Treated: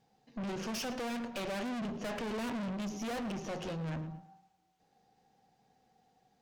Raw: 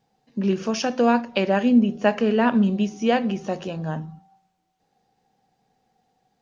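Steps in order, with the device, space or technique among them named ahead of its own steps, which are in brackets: rockabilly slapback (valve stage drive 36 dB, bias 0.5; tape echo 110 ms, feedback 34%, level -13 dB, low-pass 5.7 kHz)

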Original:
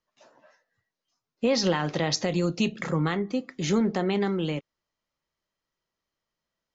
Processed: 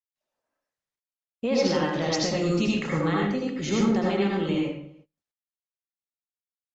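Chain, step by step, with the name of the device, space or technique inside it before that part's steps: echo from a far wall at 57 m, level -28 dB; speakerphone in a meeting room (reverberation RT60 0.55 s, pre-delay 71 ms, DRR -3 dB; speakerphone echo 100 ms, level -11 dB; level rider gain up to 5 dB; gate -45 dBFS, range -25 dB; trim -7.5 dB; Opus 32 kbps 48 kHz)

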